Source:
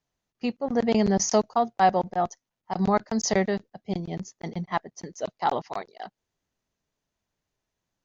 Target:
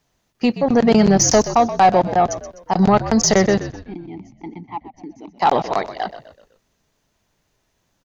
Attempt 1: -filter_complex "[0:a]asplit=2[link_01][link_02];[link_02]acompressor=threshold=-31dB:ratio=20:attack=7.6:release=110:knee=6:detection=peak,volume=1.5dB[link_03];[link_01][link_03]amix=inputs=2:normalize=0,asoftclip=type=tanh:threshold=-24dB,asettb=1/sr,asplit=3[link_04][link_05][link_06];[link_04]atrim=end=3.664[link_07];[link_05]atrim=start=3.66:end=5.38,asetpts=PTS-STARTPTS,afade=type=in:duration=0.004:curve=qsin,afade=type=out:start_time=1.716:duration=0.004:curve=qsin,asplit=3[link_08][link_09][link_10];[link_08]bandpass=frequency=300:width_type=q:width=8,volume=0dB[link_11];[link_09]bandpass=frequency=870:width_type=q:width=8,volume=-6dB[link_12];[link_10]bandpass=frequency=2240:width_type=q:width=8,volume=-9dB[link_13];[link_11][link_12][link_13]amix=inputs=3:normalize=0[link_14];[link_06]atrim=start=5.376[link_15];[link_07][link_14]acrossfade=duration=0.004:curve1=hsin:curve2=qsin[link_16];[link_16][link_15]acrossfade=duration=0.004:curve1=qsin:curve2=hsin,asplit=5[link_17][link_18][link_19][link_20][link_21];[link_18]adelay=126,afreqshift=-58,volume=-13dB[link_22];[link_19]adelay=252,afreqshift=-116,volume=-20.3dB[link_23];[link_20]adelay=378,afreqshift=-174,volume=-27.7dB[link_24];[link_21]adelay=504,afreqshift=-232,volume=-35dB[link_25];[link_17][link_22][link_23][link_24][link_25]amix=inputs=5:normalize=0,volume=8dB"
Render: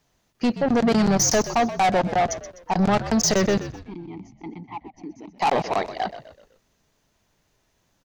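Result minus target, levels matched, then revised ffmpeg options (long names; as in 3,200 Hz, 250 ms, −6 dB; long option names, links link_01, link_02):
soft clipping: distortion +10 dB
-filter_complex "[0:a]asplit=2[link_01][link_02];[link_02]acompressor=threshold=-31dB:ratio=20:attack=7.6:release=110:knee=6:detection=peak,volume=1.5dB[link_03];[link_01][link_03]amix=inputs=2:normalize=0,asoftclip=type=tanh:threshold=-12.5dB,asettb=1/sr,asplit=3[link_04][link_05][link_06];[link_04]atrim=end=3.664[link_07];[link_05]atrim=start=3.66:end=5.38,asetpts=PTS-STARTPTS,afade=type=in:duration=0.004:curve=qsin,afade=type=out:start_time=1.716:duration=0.004:curve=qsin,asplit=3[link_08][link_09][link_10];[link_08]bandpass=frequency=300:width_type=q:width=8,volume=0dB[link_11];[link_09]bandpass=frequency=870:width_type=q:width=8,volume=-6dB[link_12];[link_10]bandpass=frequency=2240:width_type=q:width=8,volume=-9dB[link_13];[link_11][link_12][link_13]amix=inputs=3:normalize=0[link_14];[link_06]atrim=start=5.376[link_15];[link_07][link_14]acrossfade=duration=0.004:curve1=hsin:curve2=qsin[link_16];[link_16][link_15]acrossfade=duration=0.004:curve1=qsin:curve2=hsin,asplit=5[link_17][link_18][link_19][link_20][link_21];[link_18]adelay=126,afreqshift=-58,volume=-13dB[link_22];[link_19]adelay=252,afreqshift=-116,volume=-20.3dB[link_23];[link_20]adelay=378,afreqshift=-174,volume=-27.7dB[link_24];[link_21]adelay=504,afreqshift=-232,volume=-35dB[link_25];[link_17][link_22][link_23][link_24][link_25]amix=inputs=5:normalize=0,volume=8dB"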